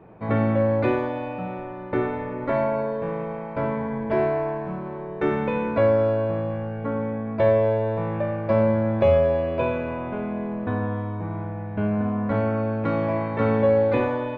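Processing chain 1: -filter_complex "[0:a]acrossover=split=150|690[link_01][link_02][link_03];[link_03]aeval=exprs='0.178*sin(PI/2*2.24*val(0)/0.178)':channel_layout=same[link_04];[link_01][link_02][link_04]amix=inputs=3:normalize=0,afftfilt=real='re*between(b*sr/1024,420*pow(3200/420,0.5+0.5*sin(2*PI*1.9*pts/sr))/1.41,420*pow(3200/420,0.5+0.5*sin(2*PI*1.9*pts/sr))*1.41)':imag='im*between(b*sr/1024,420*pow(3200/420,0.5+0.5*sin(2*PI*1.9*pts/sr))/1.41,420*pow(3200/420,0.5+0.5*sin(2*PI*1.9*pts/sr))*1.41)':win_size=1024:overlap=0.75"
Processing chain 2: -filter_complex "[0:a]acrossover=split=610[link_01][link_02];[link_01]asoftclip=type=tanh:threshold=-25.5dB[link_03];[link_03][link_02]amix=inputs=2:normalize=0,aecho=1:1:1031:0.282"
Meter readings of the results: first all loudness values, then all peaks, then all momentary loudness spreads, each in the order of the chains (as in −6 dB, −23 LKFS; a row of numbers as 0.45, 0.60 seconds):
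−27.0, −27.0 LKFS; −10.0, −13.0 dBFS; 11, 8 LU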